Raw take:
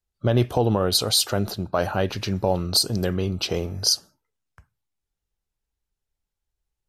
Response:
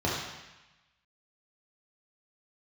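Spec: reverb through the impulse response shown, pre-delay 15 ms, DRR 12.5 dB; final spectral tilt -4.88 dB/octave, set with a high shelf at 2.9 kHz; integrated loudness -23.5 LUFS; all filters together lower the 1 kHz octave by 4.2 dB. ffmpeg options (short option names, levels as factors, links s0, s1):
-filter_complex "[0:a]equalizer=f=1000:t=o:g=-5.5,highshelf=f=2900:g=-4.5,asplit=2[s0][s1];[1:a]atrim=start_sample=2205,adelay=15[s2];[s1][s2]afir=irnorm=-1:irlink=0,volume=0.0631[s3];[s0][s3]amix=inputs=2:normalize=0,volume=1.06"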